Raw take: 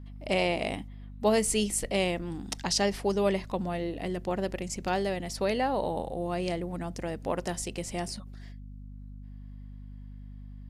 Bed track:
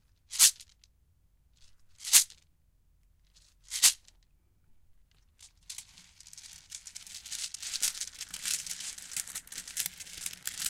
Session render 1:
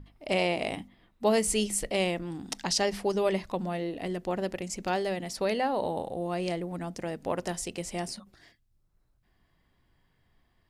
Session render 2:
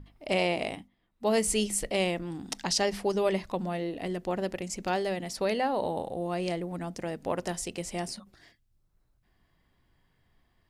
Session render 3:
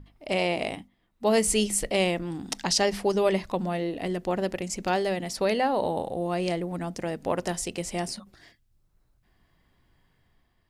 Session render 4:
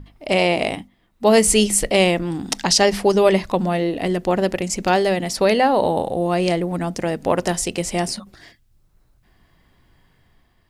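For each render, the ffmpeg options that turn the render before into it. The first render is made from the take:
ffmpeg -i in.wav -af "bandreject=frequency=50:width_type=h:width=6,bandreject=frequency=100:width_type=h:width=6,bandreject=frequency=150:width_type=h:width=6,bandreject=frequency=200:width_type=h:width=6,bandreject=frequency=250:width_type=h:width=6" out.wav
ffmpeg -i in.wav -filter_complex "[0:a]asplit=3[link_01][link_02][link_03];[link_01]atrim=end=0.91,asetpts=PTS-STARTPTS,afade=type=out:start_time=0.61:duration=0.3:silence=0.237137[link_04];[link_02]atrim=start=0.91:end=1.08,asetpts=PTS-STARTPTS,volume=-12.5dB[link_05];[link_03]atrim=start=1.08,asetpts=PTS-STARTPTS,afade=type=in:duration=0.3:silence=0.237137[link_06];[link_04][link_05][link_06]concat=n=3:v=0:a=1" out.wav
ffmpeg -i in.wav -af "dynaudnorm=framelen=160:gausssize=7:maxgain=3.5dB" out.wav
ffmpeg -i in.wav -af "volume=8.5dB,alimiter=limit=-3dB:level=0:latency=1" out.wav

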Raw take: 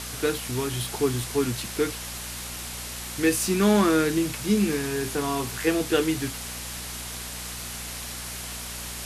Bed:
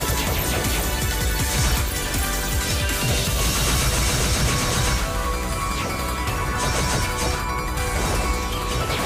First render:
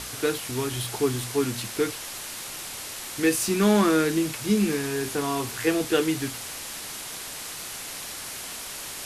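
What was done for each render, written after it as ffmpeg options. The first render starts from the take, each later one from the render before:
ffmpeg -i in.wav -af "bandreject=frequency=60:width_type=h:width=4,bandreject=frequency=120:width_type=h:width=4,bandreject=frequency=180:width_type=h:width=4,bandreject=frequency=240:width_type=h:width=4" out.wav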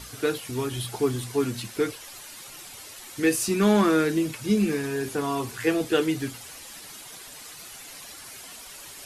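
ffmpeg -i in.wav -af "afftdn=noise_reduction=10:noise_floor=-37" out.wav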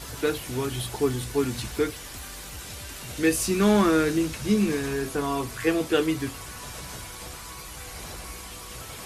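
ffmpeg -i in.wav -i bed.wav -filter_complex "[1:a]volume=-18.5dB[link_01];[0:a][link_01]amix=inputs=2:normalize=0" out.wav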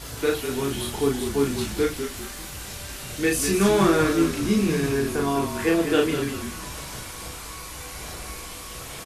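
ffmpeg -i in.wav -filter_complex "[0:a]asplit=2[link_01][link_02];[link_02]adelay=36,volume=-2.5dB[link_03];[link_01][link_03]amix=inputs=2:normalize=0,asplit=5[link_04][link_05][link_06][link_07][link_08];[link_05]adelay=197,afreqshift=-42,volume=-8dB[link_09];[link_06]adelay=394,afreqshift=-84,volume=-16.9dB[link_10];[link_07]adelay=591,afreqshift=-126,volume=-25.7dB[link_11];[link_08]adelay=788,afreqshift=-168,volume=-34.6dB[link_12];[link_04][link_09][link_10][link_11][link_12]amix=inputs=5:normalize=0" out.wav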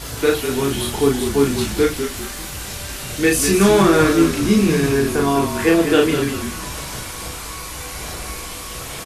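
ffmpeg -i in.wav -af "volume=6.5dB,alimiter=limit=-3dB:level=0:latency=1" out.wav

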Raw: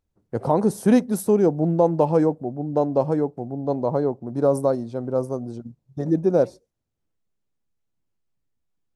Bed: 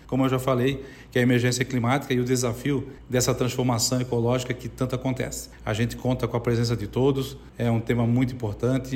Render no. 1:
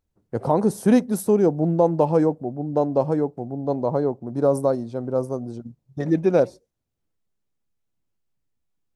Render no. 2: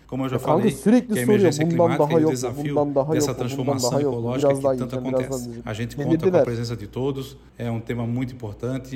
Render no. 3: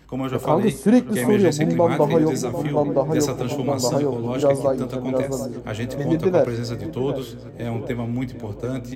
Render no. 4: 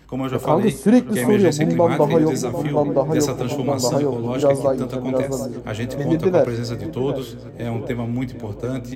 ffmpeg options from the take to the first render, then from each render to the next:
ffmpeg -i in.wav -filter_complex "[0:a]asettb=1/sr,asplit=3[link_01][link_02][link_03];[link_01]atrim=end=6.004[link_04];[link_02]atrim=start=6:end=6.4,asetpts=PTS-STARTPTS,afade=type=in:duration=0.004:curve=qsin,afade=type=out:start_time=0.396:duration=0.004:curve=qsin,equalizer=frequency=2400:width_type=o:width=1.4:gain=15[link_05];[link_03]atrim=start=6.396[link_06];[link_04][link_05]acrossfade=duration=0.004:curve1=hsin:curve2=qsin[link_07];[link_07][link_06]acrossfade=duration=0.004:curve1=qsin:curve2=hsin" out.wav
ffmpeg -i in.wav -i bed.wav -filter_complex "[1:a]volume=-3.5dB[link_01];[0:a][link_01]amix=inputs=2:normalize=0" out.wav
ffmpeg -i in.wav -filter_complex "[0:a]asplit=2[link_01][link_02];[link_02]adelay=20,volume=-13dB[link_03];[link_01][link_03]amix=inputs=2:normalize=0,asplit=2[link_04][link_05];[link_05]adelay=744,lowpass=frequency=1500:poles=1,volume=-11.5dB,asplit=2[link_06][link_07];[link_07]adelay=744,lowpass=frequency=1500:poles=1,volume=0.5,asplit=2[link_08][link_09];[link_09]adelay=744,lowpass=frequency=1500:poles=1,volume=0.5,asplit=2[link_10][link_11];[link_11]adelay=744,lowpass=frequency=1500:poles=1,volume=0.5,asplit=2[link_12][link_13];[link_13]adelay=744,lowpass=frequency=1500:poles=1,volume=0.5[link_14];[link_06][link_08][link_10][link_12][link_14]amix=inputs=5:normalize=0[link_15];[link_04][link_15]amix=inputs=2:normalize=0" out.wav
ffmpeg -i in.wav -af "volume=1.5dB" out.wav

